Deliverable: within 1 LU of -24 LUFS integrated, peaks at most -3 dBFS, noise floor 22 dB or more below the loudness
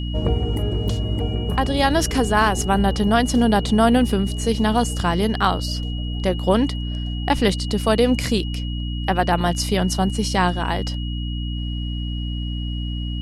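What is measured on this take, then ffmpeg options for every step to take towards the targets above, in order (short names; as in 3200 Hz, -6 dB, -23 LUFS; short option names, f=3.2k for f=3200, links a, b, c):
hum 60 Hz; harmonics up to 300 Hz; hum level -23 dBFS; steady tone 2900 Hz; tone level -35 dBFS; loudness -21.0 LUFS; peak -3.0 dBFS; loudness target -24.0 LUFS
-> -af "bandreject=f=60:t=h:w=4,bandreject=f=120:t=h:w=4,bandreject=f=180:t=h:w=4,bandreject=f=240:t=h:w=4,bandreject=f=300:t=h:w=4"
-af "bandreject=f=2.9k:w=30"
-af "volume=-3dB"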